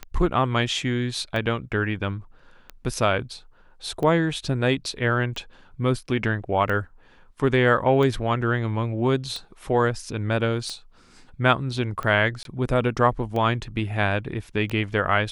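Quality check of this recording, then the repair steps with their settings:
tick 45 rpm -18 dBFS
12.43–12.45 s: dropout 22 ms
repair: de-click; interpolate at 12.43 s, 22 ms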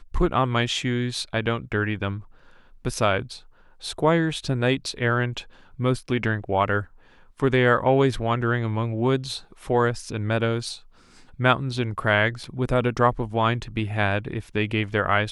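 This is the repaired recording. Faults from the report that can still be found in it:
nothing left

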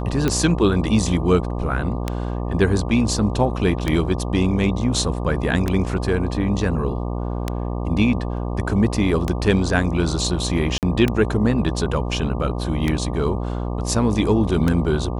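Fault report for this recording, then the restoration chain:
buzz 60 Hz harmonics 20 -25 dBFS
tick 33 1/3 rpm -7 dBFS
10.78–10.83 s: dropout 48 ms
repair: de-click; de-hum 60 Hz, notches 20; interpolate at 10.78 s, 48 ms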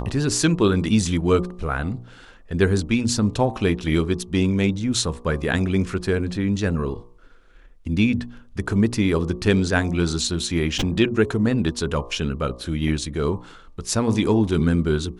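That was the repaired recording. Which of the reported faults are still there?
nothing left

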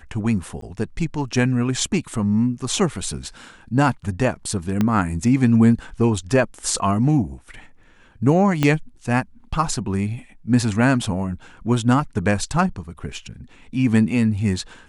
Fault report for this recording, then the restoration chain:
0.61–0.62 s: dropout 13 ms
4.81 s: pop -8 dBFS
8.63 s: pop -5 dBFS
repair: de-click; interpolate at 0.61 s, 13 ms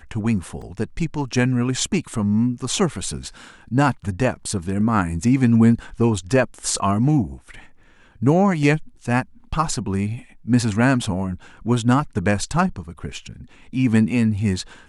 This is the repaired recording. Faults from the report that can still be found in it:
4.81 s: pop
8.63 s: pop

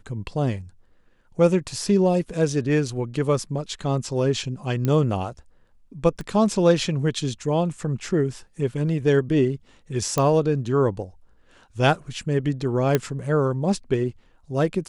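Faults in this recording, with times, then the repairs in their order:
4.85 s: pop -12 dBFS
6.21 s: pop -21 dBFS
10.18 s: pop -8 dBFS
12.95 s: pop -6 dBFS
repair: de-click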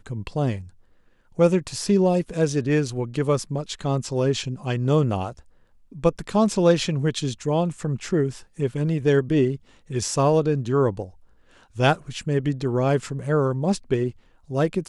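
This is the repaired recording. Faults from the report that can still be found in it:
4.85 s: pop
6.21 s: pop

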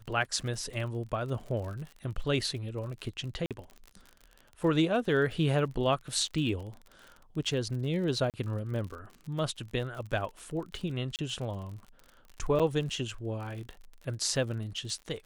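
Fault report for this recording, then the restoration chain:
crackle 49 per s -39 dBFS
3.46–3.51 s: dropout 47 ms
8.30–8.34 s: dropout 38 ms
11.16–11.19 s: dropout 28 ms
12.59–12.60 s: dropout 6.7 ms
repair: de-click; interpolate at 3.46 s, 47 ms; interpolate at 8.30 s, 38 ms; interpolate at 11.16 s, 28 ms; interpolate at 12.59 s, 6.7 ms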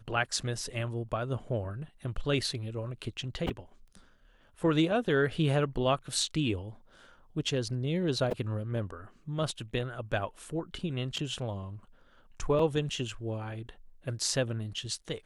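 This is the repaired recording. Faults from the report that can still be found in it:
nothing left

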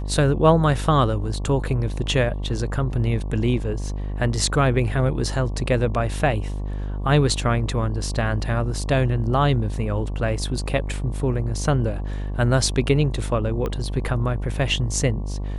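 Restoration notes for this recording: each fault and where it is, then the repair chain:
buzz 50 Hz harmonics 23 -27 dBFS
13.66 s: pop -15 dBFS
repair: de-click; de-hum 50 Hz, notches 23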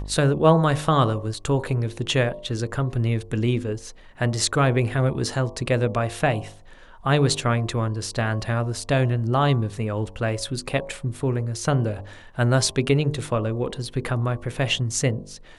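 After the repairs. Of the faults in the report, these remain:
13.66 s: pop

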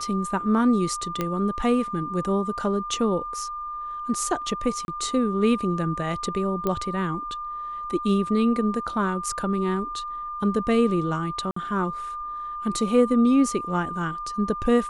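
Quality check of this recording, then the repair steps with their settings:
whine 1.2 kHz -30 dBFS
1.21 s: pop -12 dBFS
4.85–4.88 s: dropout 31 ms
6.67 s: pop -13 dBFS
11.51–11.56 s: dropout 54 ms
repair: de-click; band-stop 1.2 kHz, Q 30; interpolate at 4.85 s, 31 ms; interpolate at 11.51 s, 54 ms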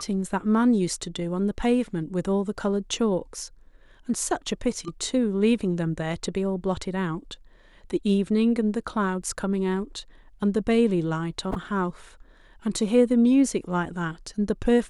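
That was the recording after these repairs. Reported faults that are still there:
nothing left

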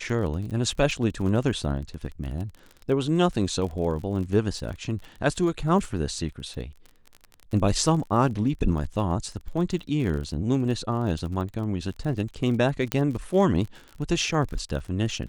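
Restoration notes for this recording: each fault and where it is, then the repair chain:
crackle 35 per s -33 dBFS
12.92 s: pop -9 dBFS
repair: de-click

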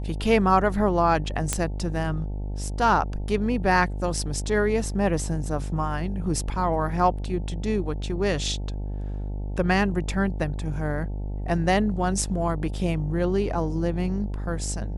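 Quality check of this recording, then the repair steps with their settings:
buzz 50 Hz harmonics 18 -30 dBFS
1.53 s: pop -8 dBFS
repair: de-click; de-hum 50 Hz, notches 18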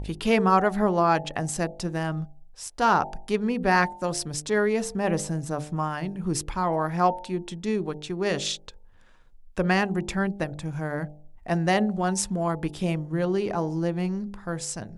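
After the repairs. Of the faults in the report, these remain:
nothing left

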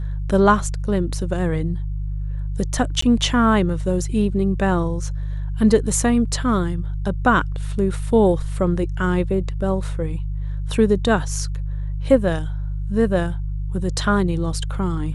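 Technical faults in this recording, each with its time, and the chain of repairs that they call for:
hum 50 Hz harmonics 3 -25 dBFS
3.01–3.02 s: dropout 14 ms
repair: de-hum 50 Hz, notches 3; interpolate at 3.01 s, 14 ms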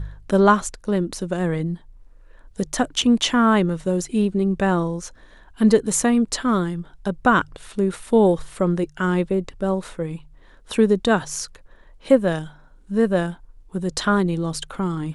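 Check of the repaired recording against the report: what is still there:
nothing left

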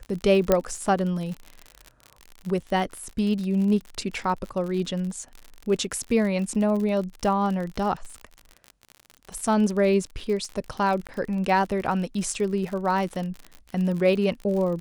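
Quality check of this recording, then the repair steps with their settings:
crackle 55 per s -31 dBFS
0.52 s: pop -6 dBFS
11.07–11.09 s: dropout 17 ms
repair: de-click; interpolate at 11.07 s, 17 ms

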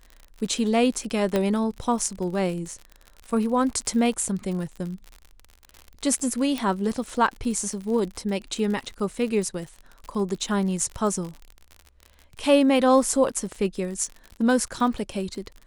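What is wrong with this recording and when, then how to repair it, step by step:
crackle 58 per s -32 dBFS
1.36 s: pop -10 dBFS
6.58 s: pop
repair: de-click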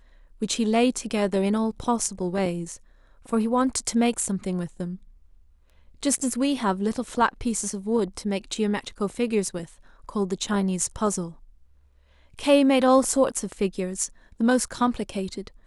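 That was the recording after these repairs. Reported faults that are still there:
nothing left

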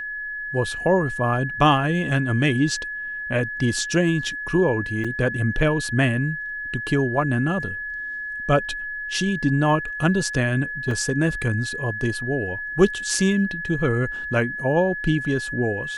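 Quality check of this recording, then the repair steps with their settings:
whine 1.7 kHz -28 dBFS
5.04–5.05 s: dropout 5.6 ms
10.91 s: dropout 2.8 ms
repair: band-stop 1.7 kHz, Q 30; interpolate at 5.04 s, 5.6 ms; interpolate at 10.91 s, 2.8 ms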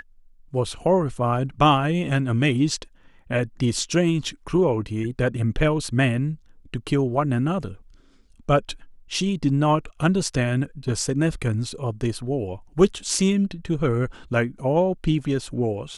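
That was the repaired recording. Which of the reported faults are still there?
nothing left

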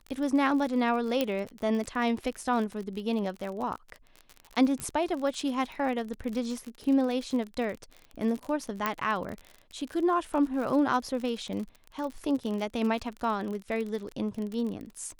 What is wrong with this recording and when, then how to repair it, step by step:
crackle 44 per s -34 dBFS
1.21 s: pop -13 dBFS
4.80 s: pop -19 dBFS
8.86 s: pop -13 dBFS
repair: de-click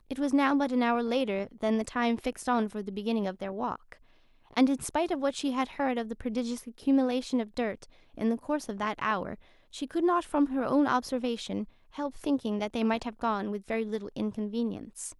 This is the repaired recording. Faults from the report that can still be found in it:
1.21 s: pop

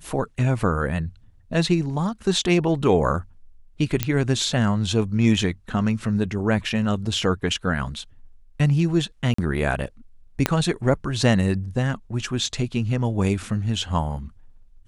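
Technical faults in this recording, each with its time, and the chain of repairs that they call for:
4.03 s: pop -5 dBFS
9.34–9.38 s: dropout 44 ms
10.46 s: pop -3 dBFS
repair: de-click; interpolate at 9.34 s, 44 ms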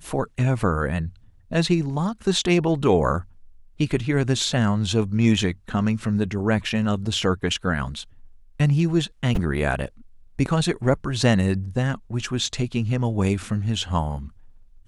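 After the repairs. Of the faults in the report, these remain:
10.46 s: pop

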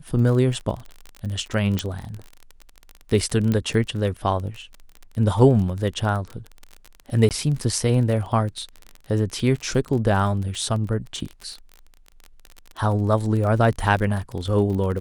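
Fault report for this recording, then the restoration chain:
crackle 28 per s -28 dBFS
1.79 s: pop -8 dBFS
3.52 s: pop -12 dBFS
7.29–7.31 s: dropout 18 ms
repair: de-click; interpolate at 7.29 s, 18 ms

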